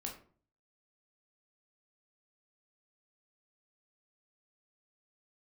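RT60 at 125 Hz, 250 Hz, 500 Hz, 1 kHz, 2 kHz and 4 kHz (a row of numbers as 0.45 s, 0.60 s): 0.70 s, 0.55 s, 0.50 s, 0.45 s, 0.35 s, 0.25 s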